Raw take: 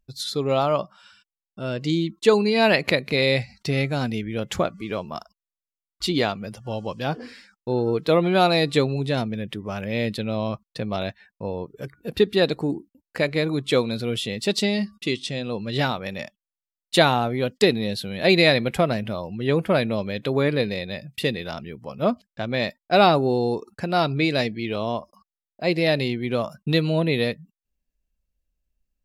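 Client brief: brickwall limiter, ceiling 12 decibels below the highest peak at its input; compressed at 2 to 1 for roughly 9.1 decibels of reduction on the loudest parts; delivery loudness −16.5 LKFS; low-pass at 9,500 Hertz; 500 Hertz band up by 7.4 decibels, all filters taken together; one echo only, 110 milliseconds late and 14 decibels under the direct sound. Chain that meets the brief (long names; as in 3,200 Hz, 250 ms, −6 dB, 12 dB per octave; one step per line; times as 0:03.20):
low-pass filter 9,500 Hz
parametric band 500 Hz +9 dB
downward compressor 2 to 1, threshold −20 dBFS
brickwall limiter −16.5 dBFS
single-tap delay 110 ms −14 dB
level +10.5 dB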